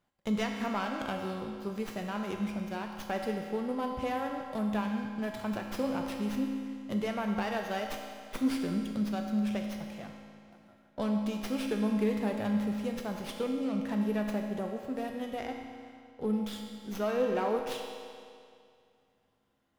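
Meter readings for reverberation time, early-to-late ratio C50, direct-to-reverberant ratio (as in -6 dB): 2.3 s, 3.0 dB, 1.5 dB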